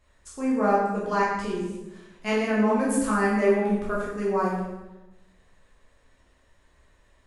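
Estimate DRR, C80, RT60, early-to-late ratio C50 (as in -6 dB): -7.0 dB, 4.0 dB, 1.0 s, 1.0 dB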